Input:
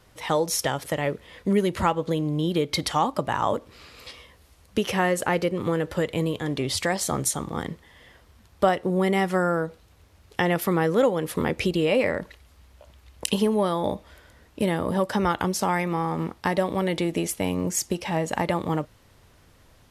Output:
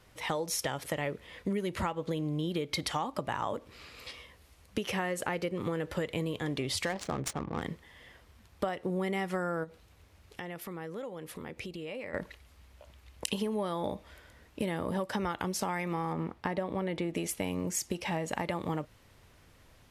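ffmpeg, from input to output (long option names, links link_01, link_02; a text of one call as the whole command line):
ffmpeg -i in.wav -filter_complex "[0:a]asettb=1/sr,asplit=3[link_01][link_02][link_03];[link_01]atrim=end=6.854[link_04];[link_02]atrim=start=6.85:end=7.62,asetpts=PTS-STARTPTS,afade=type=in:duration=0.004:curve=qsin,afade=type=out:start_time=0.766:duration=0.004:curve=qsin,adynamicsmooth=sensitivity=4:basefreq=730[link_05];[link_03]atrim=start=7.616[link_06];[link_04][link_05]acrossfade=duration=0.004:curve1=hsin:curve2=qsin[link_07];[link_07][link_06]acrossfade=duration=0.004:curve1=qsin:curve2=hsin,asplit=3[link_08][link_09][link_10];[link_08]afade=type=out:start_time=9.63:duration=0.02[link_11];[link_09]acompressor=threshold=-41dB:ratio=2.5:attack=3.2:release=140:knee=1:detection=peak,afade=type=in:start_time=9.63:duration=0.02,afade=type=out:start_time=12.13:duration=0.02[link_12];[link_10]afade=type=in:start_time=12.13:duration=0.02[link_13];[link_11][link_12][link_13]amix=inputs=3:normalize=0,asettb=1/sr,asplit=3[link_14][link_15][link_16];[link_14]atrim=end=16.134[link_17];[link_15]atrim=start=16.13:end=17.15,asetpts=PTS-STARTPTS,afade=type=in:duration=0.004:curve=qsin,afade=type=out:start_time=1.016:duration=0.004:curve=qsin,highshelf=frequency=3200:gain=-11.5[link_18];[link_16]atrim=start=17.146[link_19];[link_17][link_18]acrossfade=duration=0.004:curve1=hsin:curve2=qsin[link_20];[link_20][link_19]acrossfade=duration=0.004:curve1=qsin:curve2=hsin,equalizer=frequency=2300:width_type=o:width=0.77:gain=3,acompressor=threshold=-25dB:ratio=6,volume=-4dB" out.wav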